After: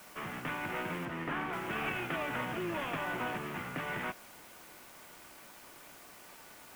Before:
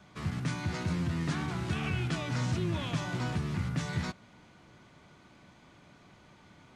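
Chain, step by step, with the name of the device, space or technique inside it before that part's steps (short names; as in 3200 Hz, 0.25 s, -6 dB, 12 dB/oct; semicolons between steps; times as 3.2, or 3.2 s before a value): army field radio (BPF 390–3000 Hz; CVSD 16 kbps; white noise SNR 17 dB); 1.05–1.53 high shelf 4900 Hz -10 dB; gain +4 dB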